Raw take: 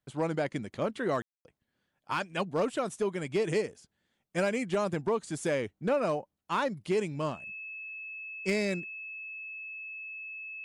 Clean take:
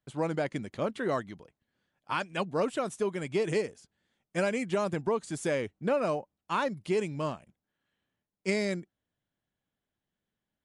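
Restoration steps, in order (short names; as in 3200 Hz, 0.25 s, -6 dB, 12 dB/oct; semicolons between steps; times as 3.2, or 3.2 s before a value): clip repair -21.5 dBFS; notch 2600 Hz, Q 30; room tone fill 1.22–1.45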